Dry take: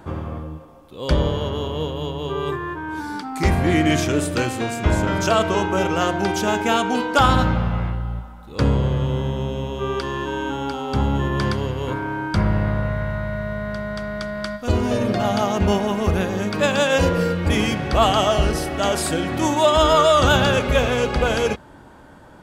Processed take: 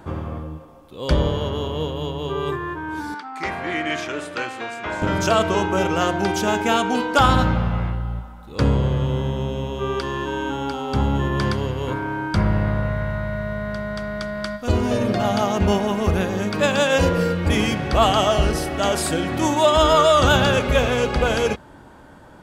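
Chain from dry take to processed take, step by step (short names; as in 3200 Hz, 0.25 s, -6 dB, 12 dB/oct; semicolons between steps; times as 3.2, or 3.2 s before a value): 3.14–5.02 band-pass 1500 Hz, Q 0.68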